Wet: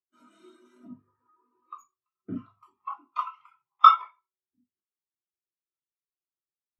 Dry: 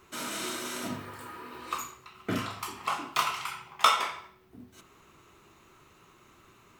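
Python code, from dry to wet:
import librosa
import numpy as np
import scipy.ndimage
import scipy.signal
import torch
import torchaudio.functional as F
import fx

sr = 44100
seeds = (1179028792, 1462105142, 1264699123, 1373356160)

y = fx.spectral_expand(x, sr, expansion=2.5)
y = F.gain(torch.from_numpy(y), 3.0).numpy()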